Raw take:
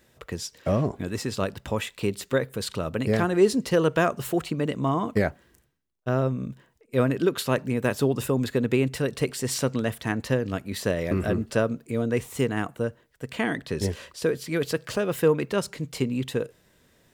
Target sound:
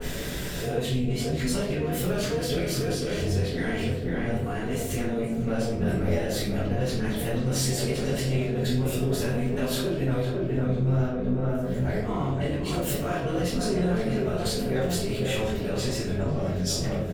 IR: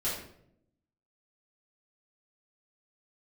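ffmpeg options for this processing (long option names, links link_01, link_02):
-filter_complex "[0:a]areverse,asplit=2[link_01][link_02];[link_02]volume=26dB,asoftclip=hard,volume=-26dB,volume=-4dB[link_03];[link_01][link_03]amix=inputs=2:normalize=0,asplit=2[link_04][link_05];[link_05]adelay=501,lowpass=frequency=1800:poles=1,volume=-8.5dB,asplit=2[link_06][link_07];[link_07]adelay=501,lowpass=frequency=1800:poles=1,volume=0.52,asplit=2[link_08][link_09];[link_09]adelay=501,lowpass=frequency=1800:poles=1,volume=0.52,asplit=2[link_10][link_11];[link_11]adelay=501,lowpass=frequency=1800:poles=1,volume=0.52,asplit=2[link_12][link_13];[link_13]adelay=501,lowpass=frequency=1800:poles=1,volume=0.52,asplit=2[link_14][link_15];[link_15]adelay=501,lowpass=frequency=1800:poles=1,volume=0.52[link_16];[link_04][link_06][link_08][link_10][link_12][link_14][link_16]amix=inputs=7:normalize=0,flanger=delay=19.5:depth=4.5:speed=0.62,acompressor=mode=upward:threshold=-27dB:ratio=2.5,lowshelf=frequency=270:gain=6,alimiter=level_in=2.5dB:limit=-24dB:level=0:latency=1:release=203,volume=-2.5dB,tremolo=f=230:d=0.667[link_17];[1:a]atrim=start_sample=2205,asetrate=48510,aresample=44100[link_18];[link_17][link_18]afir=irnorm=-1:irlink=0,adynamicequalizer=threshold=0.00282:dfrequency=1900:dqfactor=0.7:tfrequency=1900:tqfactor=0.7:attack=5:release=100:ratio=0.375:range=3:mode=boostabove:tftype=highshelf,volume=3dB"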